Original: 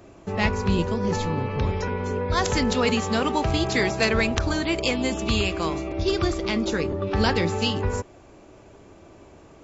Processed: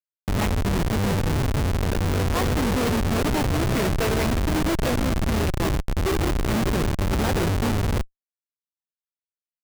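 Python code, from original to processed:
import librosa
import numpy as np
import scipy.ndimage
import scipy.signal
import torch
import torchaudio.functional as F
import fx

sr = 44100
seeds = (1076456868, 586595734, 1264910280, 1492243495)

y = fx.high_shelf(x, sr, hz=4900.0, db=-12.0)
y = fx.schmitt(y, sr, flips_db=-23.0)
y = y * librosa.db_to_amplitude(3.5)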